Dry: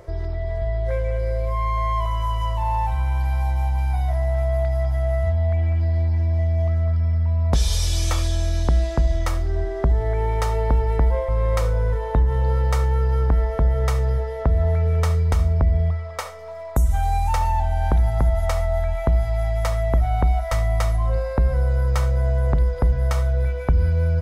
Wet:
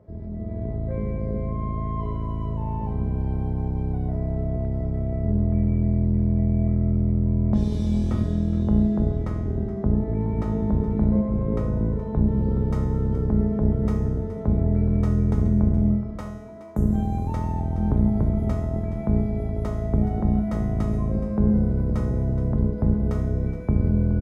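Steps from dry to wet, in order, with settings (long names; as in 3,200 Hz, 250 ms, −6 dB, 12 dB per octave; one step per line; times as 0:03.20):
sub-octave generator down 1 octave, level +4 dB
high-pass filter 80 Hz 12 dB per octave
tilt shelving filter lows +8.5 dB, about 750 Hz
tuned comb filter 210 Hz, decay 1.1 s, mix 90%
single-tap delay 421 ms −14.5 dB
automatic gain control gain up to 5.5 dB
high-shelf EQ 4,700 Hz −11.5 dB, from 0:12.27 −3 dB
level +3 dB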